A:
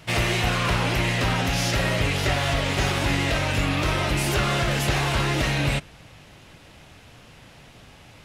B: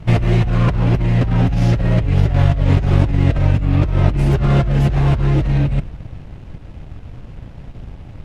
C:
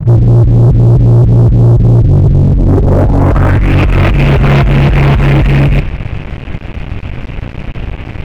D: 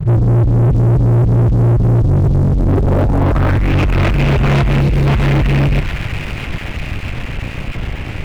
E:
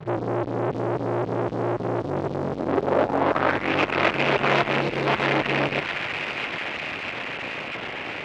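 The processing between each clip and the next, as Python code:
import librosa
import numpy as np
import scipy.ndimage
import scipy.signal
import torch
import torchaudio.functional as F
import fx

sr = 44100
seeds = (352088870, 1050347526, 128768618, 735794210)

y1 = fx.leveller(x, sr, passes=2)
y1 = fx.tilt_eq(y1, sr, slope=-4.5)
y1 = fx.over_compress(y1, sr, threshold_db=-9.0, ratio=-1.0)
y1 = y1 * 10.0 ** (-5.5 / 20.0)
y2 = fx.leveller(y1, sr, passes=3)
y2 = fx.filter_sweep_lowpass(y2, sr, from_hz=140.0, to_hz=2500.0, start_s=2.23, end_s=3.73, q=3.1)
y2 = fx.leveller(y2, sr, passes=3)
y2 = y2 * 10.0 ** (-8.5 / 20.0)
y3 = fx.spec_box(y2, sr, start_s=4.81, length_s=0.26, low_hz=580.0, high_hz=3600.0, gain_db=-11)
y3 = fx.echo_wet_highpass(y3, sr, ms=651, feedback_pct=68, hz=1700.0, wet_db=-6.5)
y3 = fx.power_curve(y3, sr, exponent=0.7)
y3 = y3 * 10.0 ** (-6.5 / 20.0)
y4 = fx.bandpass_edges(y3, sr, low_hz=430.0, high_hz=4400.0)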